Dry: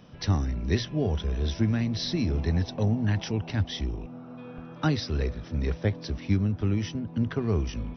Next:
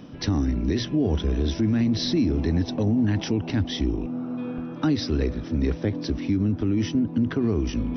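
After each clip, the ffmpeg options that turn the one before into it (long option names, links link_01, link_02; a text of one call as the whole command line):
ffmpeg -i in.wav -af "equalizer=frequency=290:width=2:gain=12,areverse,acompressor=mode=upward:threshold=-29dB:ratio=2.5,areverse,alimiter=limit=-18dB:level=0:latency=1:release=68,volume=3.5dB" out.wav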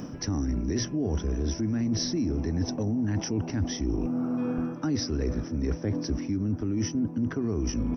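ffmpeg -i in.wav -af "firequalizer=gain_entry='entry(1500,0);entry(3800,-12);entry(5600,8)':delay=0.05:min_phase=1,areverse,acompressor=threshold=-32dB:ratio=6,areverse,volume=6.5dB" out.wav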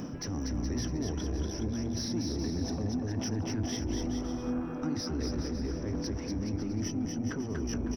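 ffmpeg -i in.wav -af "alimiter=level_in=2.5dB:limit=-24dB:level=0:latency=1:release=15,volume=-2.5dB,asoftclip=type=tanh:threshold=-28dB,aecho=1:1:240|420|555|656.2|732.2:0.631|0.398|0.251|0.158|0.1" out.wav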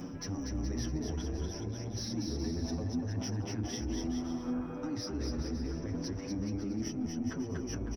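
ffmpeg -i in.wav -filter_complex "[0:a]asplit=2[link_01][link_02];[link_02]adelay=8.6,afreqshift=0.67[link_03];[link_01][link_03]amix=inputs=2:normalize=1" out.wav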